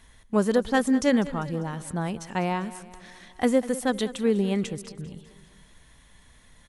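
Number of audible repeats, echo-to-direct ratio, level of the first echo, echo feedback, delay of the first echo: 4, -15.0 dB, -16.5 dB, 55%, 0.198 s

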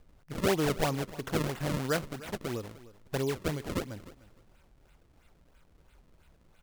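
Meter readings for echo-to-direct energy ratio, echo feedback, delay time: -18.0 dB, 20%, 0.303 s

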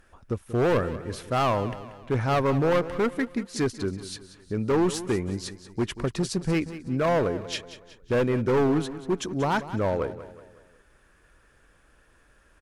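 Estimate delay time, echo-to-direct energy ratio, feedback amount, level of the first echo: 0.185 s, -13.0 dB, 45%, -14.0 dB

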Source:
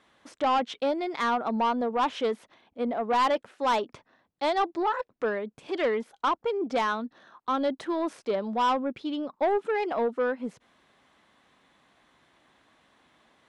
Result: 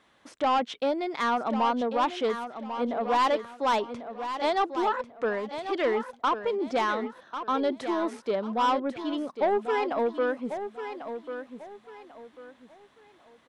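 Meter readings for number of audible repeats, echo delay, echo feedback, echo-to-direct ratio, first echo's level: 3, 1.094 s, 30%, -9.0 dB, -9.5 dB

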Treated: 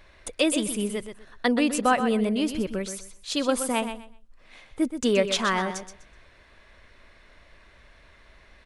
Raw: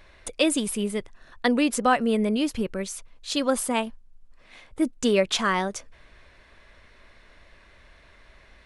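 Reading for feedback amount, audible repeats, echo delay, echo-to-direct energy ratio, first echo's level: 22%, 2, 0.125 s, -9.5 dB, -9.5 dB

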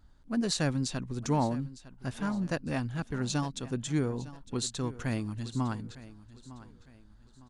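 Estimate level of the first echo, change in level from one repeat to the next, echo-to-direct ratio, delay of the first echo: -17.0 dB, -9.0 dB, -16.5 dB, 0.906 s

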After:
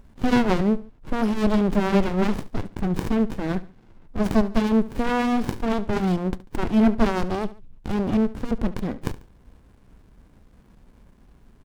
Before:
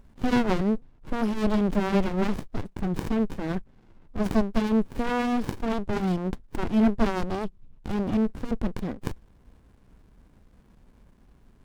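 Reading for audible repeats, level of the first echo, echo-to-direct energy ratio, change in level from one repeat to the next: 2, -17.0 dB, -16.5 dB, -8.5 dB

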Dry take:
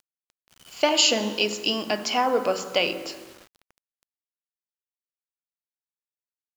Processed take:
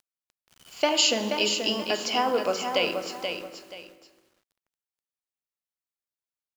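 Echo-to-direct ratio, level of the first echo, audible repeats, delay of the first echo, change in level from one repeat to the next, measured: -6.0 dB, -6.5 dB, 2, 0.48 s, -11.0 dB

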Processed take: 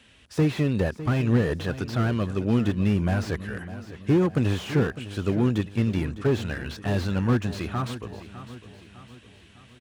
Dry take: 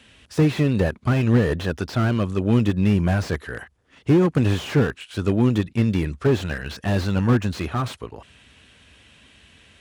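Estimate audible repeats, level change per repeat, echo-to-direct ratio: 4, -6.5 dB, -13.0 dB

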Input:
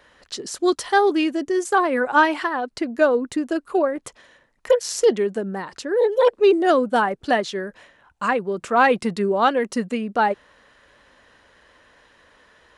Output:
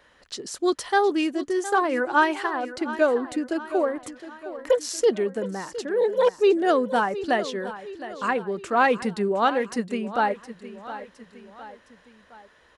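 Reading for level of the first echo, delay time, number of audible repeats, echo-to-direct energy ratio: -14.0 dB, 0.713 s, 3, -13.0 dB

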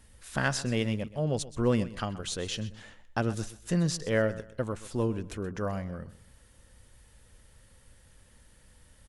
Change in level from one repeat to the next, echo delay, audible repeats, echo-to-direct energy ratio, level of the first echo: -11.0 dB, 0.127 s, 2, -16.0 dB, -16.5 dB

